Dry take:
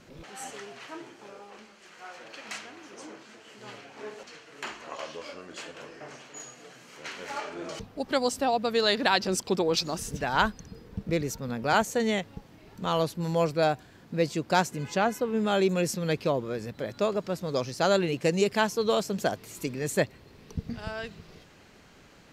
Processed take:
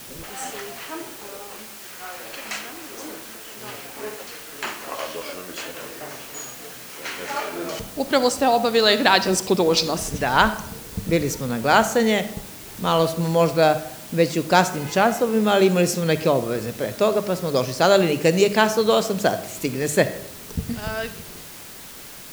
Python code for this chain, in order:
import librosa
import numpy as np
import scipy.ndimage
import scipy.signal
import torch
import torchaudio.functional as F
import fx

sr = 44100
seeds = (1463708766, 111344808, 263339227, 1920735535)

y = fx.hum_notches(x, sr, base_hz=50, count=4)
y = fx.rev_freeverb(y, sr, rt60_s=0.77, hf_ratio=0.5, predelay_ms=10, drr_db=12.0)
y = fx.quant_dither(y, sr, seeds[0], bits=8, dither='triangular')
y = y * librosa.db_to_amplitude(7.5)